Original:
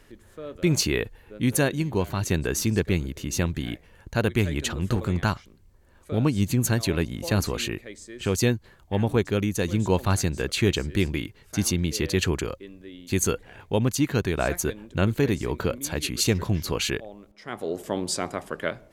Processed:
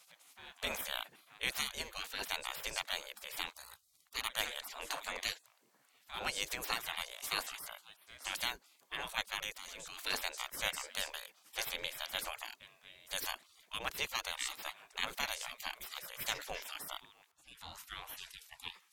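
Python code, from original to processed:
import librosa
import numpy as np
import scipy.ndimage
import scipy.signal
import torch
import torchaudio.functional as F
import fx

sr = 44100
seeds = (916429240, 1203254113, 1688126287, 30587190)

y = fx.highpass(x, sr, hz=400.0, slope=12, at=(3.49, 4.15))
y = fx.spec_gate(y, sr, threshold_db=-25, keep='weak')
y = fx.level_steps(y, sr, step_db=17, at=(9.5, 9.98))
y = y * 10.0 ** (2.5 / 20.0)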